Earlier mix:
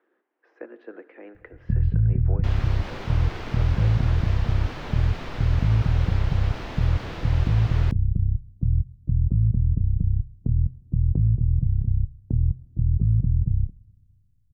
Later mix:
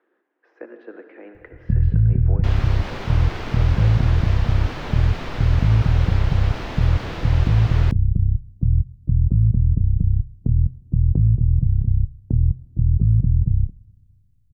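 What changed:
speech: send +10.5 dB; first sound +4.0 dB; second sound +4.5 dB

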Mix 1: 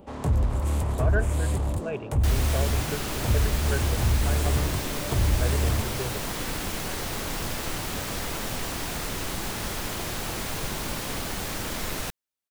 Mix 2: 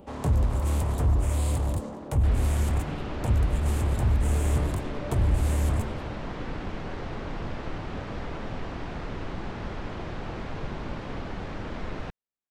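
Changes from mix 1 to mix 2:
speech: muted; second sound: add tape spacing loss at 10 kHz 37 dB

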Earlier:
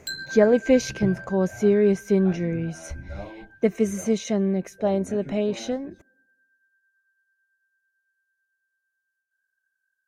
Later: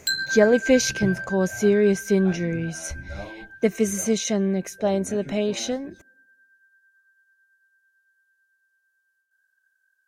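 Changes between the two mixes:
speech: add treble shelf 2.8 kHz +10.5 dB; background +8.0 dB

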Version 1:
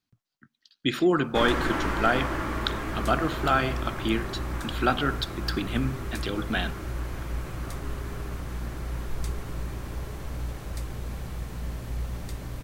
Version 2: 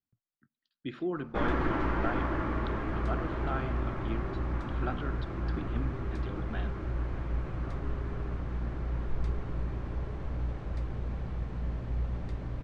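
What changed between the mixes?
speech -10.0 dB; master: add tape spacing loss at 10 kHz 31 dB

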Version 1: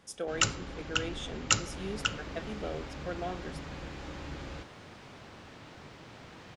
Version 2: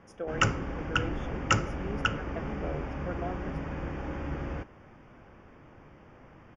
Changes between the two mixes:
first sound +7.5 dB; second sound -6.5 dB; master: add boxcar filter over 11 samples

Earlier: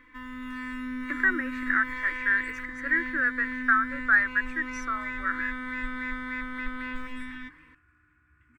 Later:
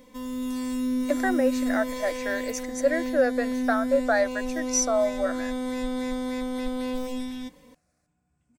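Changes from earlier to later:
speech +3.5 dB; second sound -11.0 dB; master: remove FFT filter 110 Hz 0 dB, 190 Hz -21 dB, 320 Hz +1 dB, 650 Hz -29 dB, 1.2 kHz +9 dB, 1.8 kHz +13 dB, 3.4 kHz -8 dB, 5.8 kHz -20 dB

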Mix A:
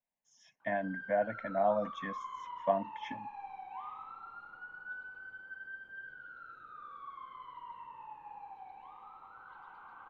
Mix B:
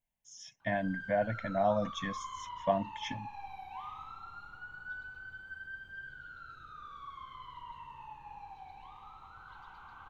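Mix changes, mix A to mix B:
background: add peaking EQ 520 Hz -4.5 dB 0.28 oct; master: remove three-band isolator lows -18 dB, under 200 Hz, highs -16 dB, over 2.4 kHz

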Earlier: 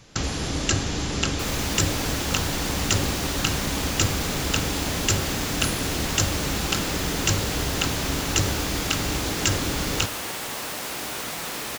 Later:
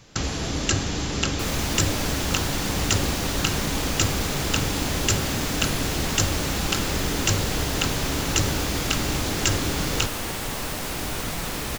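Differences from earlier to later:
speech: remove frequency weighting ITU-R 468; second sound: remove high-pass 410 Hz 6 dB/octave

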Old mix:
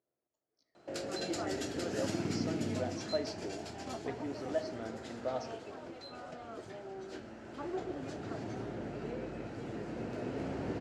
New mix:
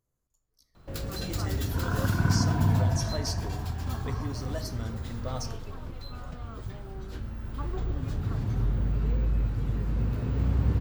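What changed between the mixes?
speech: remove distance through air 240 m; second sound: unmuted; master: remove cabinet simulation 310–8400 Hz, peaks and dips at 340 Hz +6 dB, 660 Hz +7 dB, 1.1 kHz -8 dB, 3.6 kHz -5 dB

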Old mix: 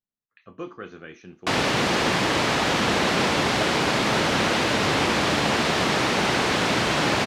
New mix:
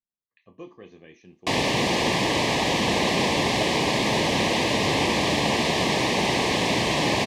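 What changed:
speech -6.0 dB; master: add Butterworth band-stop 1.4 kHz, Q 2.2

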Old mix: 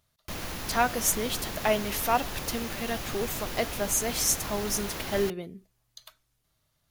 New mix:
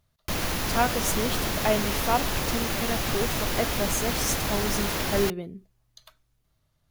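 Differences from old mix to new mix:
speech: add tilt EQ -1.5 dB/octave; background +8.0 dB

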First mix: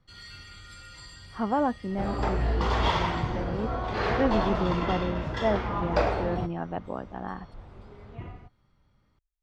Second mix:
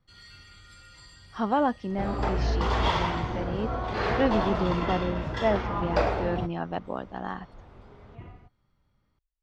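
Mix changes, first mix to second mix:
speech: remove distance through air 450 m; first sound -4.5 dB

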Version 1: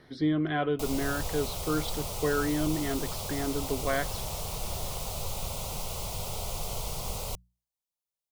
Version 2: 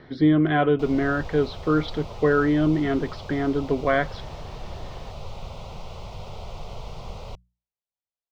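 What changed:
speech +9.0 dB; master: add distance through air 220 m

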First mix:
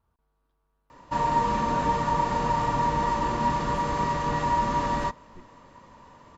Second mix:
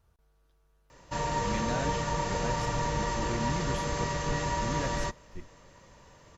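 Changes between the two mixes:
speech +7.5 dB; master: add fifteen-band graphic EQ 250 Hz -9 dB, 1 kHz -10 dB, 6.3 kHz +7 dB

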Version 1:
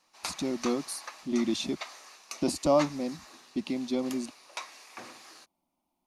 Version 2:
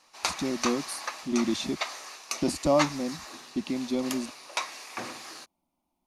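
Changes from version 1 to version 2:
background +8.0 dB; master: add bass shelf 130 Hz +6.5 dB

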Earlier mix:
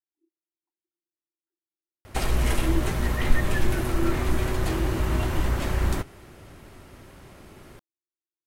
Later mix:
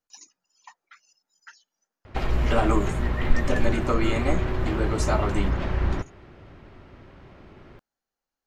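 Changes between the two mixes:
speech: remove Butterworth band-pass 340 Hz, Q 7.7; background: add distance through air 220 m

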